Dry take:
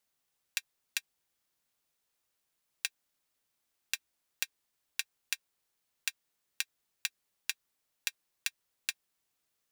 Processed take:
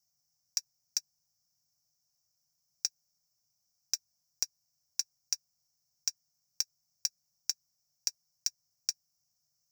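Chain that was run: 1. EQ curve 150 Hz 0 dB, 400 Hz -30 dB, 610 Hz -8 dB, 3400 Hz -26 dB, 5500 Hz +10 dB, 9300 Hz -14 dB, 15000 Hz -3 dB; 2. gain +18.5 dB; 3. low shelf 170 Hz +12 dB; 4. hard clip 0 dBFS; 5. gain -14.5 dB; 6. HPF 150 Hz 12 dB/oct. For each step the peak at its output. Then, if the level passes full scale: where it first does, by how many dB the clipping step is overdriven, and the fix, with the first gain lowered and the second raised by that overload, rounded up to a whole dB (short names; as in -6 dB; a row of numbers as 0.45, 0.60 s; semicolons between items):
-14.5, +4.0, +4.0, 0.0, -14.5, -14.0 dBFS; step 2, 4.0 dB; step 2 +14.5 dB, step 5 -10.5 dB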